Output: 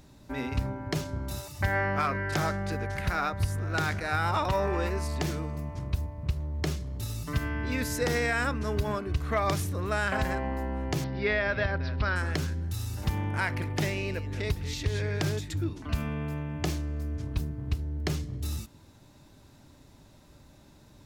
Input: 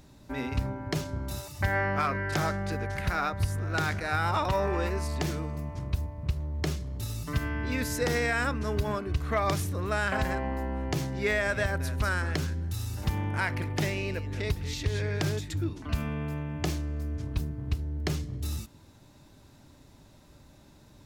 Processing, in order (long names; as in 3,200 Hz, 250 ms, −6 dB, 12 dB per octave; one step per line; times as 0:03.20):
0:11.04–0:12.16: Butterworth low-pass 5,200 Hz 72 dB per octave